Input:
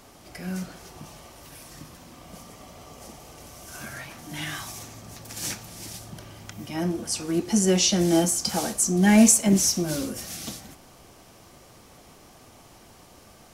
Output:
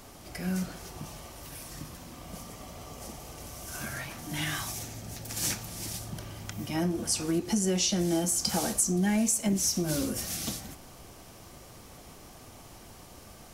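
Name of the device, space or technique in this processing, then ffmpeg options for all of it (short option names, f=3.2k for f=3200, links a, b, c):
ASMR close-microphone chain: -filter_complex "[0:a]asettb=1/sr,asplit=3[a][b][c];[a]atrim=end=4.734[d];[b]atrim=start=4.73:end=5.31,asetpts=PTS-STARTPTS,afade=t=in:d=0.004:c=qsin,afade=t=out:st=0.576:d=0.004:c=qsin,equalizer=f=1.1k:w=7.7:g=-12[e];[c]atrim=start=5.306[f];[d][e]acrossfade=d=0.004:c1=hsin:c2=qsin[g];[g][f]acrossfade=d=0.004:c1=qsin:c2=hsin,lowshelf=f=110:g=6,acompressor=threshold=-25dB:ratio=5,highshelf=f=9.2k:g=4.5"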